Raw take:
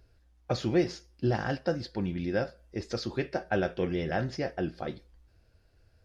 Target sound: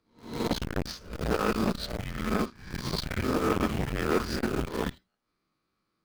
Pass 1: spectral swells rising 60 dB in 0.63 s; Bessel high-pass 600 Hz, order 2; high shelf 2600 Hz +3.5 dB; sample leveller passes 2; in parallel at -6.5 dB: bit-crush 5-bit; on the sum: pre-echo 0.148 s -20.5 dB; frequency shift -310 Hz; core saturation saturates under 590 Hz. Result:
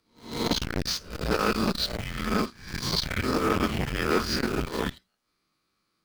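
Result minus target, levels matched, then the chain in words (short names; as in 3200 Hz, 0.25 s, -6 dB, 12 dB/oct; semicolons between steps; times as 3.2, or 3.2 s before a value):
4000 Hz band +5.0 dB
spectral swells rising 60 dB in 0.63 s; Bessel high-pass 600 Hz, order 2; high shelf 2600 Hz -7 dB; sample leveller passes 2; in parallel at -6.5 dB: bit-crush 5-bit; on the sum: pre-echo 0.148 s -20.5 dB; frequency shift -310 Hz; core saturation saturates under 590 Hz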